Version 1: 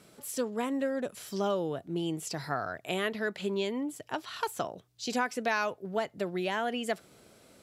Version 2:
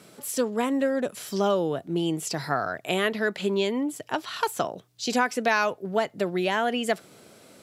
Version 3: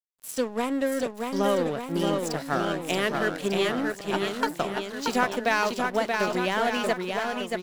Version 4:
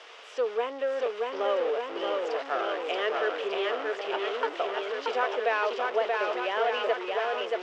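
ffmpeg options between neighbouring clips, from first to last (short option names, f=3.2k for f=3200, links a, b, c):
-af "highpass=110,volume=6.5dB"
-af "aeval=exprs='sgn(val(0))*max(abs(val(0))-0.0158,0)':c=same,aecho=1:1:630|1197|1707|2167|2580:0.631|0.398|0.251|0.158|0.1"
-af "aeval=exprs='val(0)+0.5*0.075*sgn(val(0))':c=same,highpass=f=430:w=0.5412,highpass=f=430:w=1.3066,equalizer=f=450:t=q:w=4:g=9,equalizer=f=680:t=q:w=4:g=3,equalizer=f=1.2k:t=q:w=4:g=4,equalizer=f=2.9k:t=q:w=4:g=4,equalizer=f=4.2k:t=q:w=4:g=-8,lowpass=f=4.3k:w=0.5412,lowpass=f=4.3k:w=1.3066,volume=-8dB"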